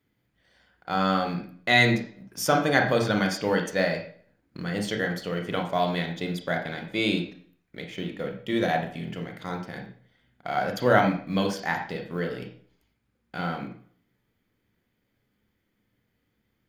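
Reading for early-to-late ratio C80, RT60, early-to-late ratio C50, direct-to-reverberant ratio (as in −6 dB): 12.0 dB, 0.50 s, 7.5 dB, 3.5 dB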